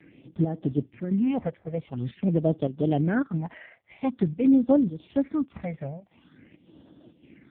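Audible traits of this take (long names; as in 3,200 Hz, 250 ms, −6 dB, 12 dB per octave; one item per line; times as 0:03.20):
chopped level 1.8 Hz, depth 60%, duty 80%
phaser sweep stages 6, 0.47 Hz, lowest notch 290–2,200 Hz
AMR narrowband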